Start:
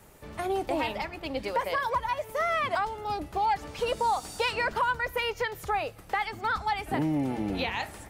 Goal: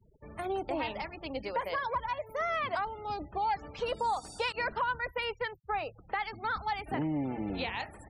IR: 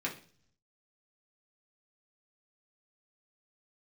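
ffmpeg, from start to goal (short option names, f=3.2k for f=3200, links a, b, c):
-filter_complex "[0:a]asettb=1/sr,asplit=3[a][b][c];[a]atrim=end=4.524[d];[b]atrim=start=4.52:end=5.86,asetpts=PTS-STARTPTS,afade=t=in:d=0.004:c=qsin,afade=t=out:st=1.336:d=0.004:c=qsin,agate=range=-33dB:threshold=-30dB:ratio=3:detection=peak[e];[c]atrim=start=5.856[f];[d][e]acrossfade=d=0.004:c1=hsin:c2=qsin[g];[g][f]acrossfade=d=0.004:c1=qsin:c2=hsin,afftfilt=real='re*gte(hypot(re,im),0.00708)':imag='im*gte(hypot(re,im),0.00708)':win_size=1024:overlap=0.75,volume=-4.5dB"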